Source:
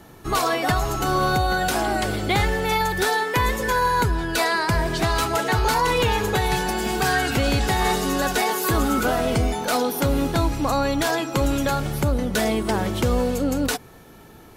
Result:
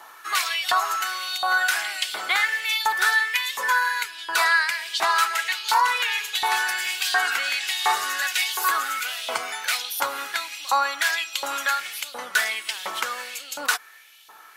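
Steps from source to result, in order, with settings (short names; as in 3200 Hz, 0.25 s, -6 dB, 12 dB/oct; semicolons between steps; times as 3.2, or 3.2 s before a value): vocal rider 0.5 s; LFO high-pass saw up 1.4 Hz 950–3500 Hz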